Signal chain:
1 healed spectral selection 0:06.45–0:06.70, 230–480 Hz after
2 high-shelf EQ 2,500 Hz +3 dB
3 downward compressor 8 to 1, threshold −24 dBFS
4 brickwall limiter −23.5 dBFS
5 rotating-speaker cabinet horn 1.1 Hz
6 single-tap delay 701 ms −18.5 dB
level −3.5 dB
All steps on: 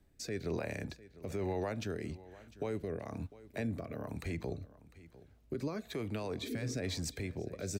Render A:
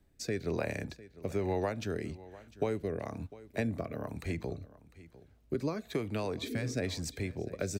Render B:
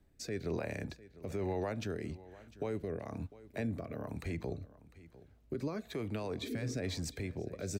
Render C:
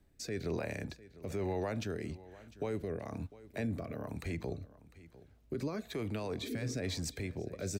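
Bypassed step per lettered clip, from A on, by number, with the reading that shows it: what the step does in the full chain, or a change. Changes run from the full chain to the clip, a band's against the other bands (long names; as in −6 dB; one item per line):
4, average gain reduction 2.0 dB
2, 8 kHz band −2.0 dB
3, average gain reduction 2.5 dB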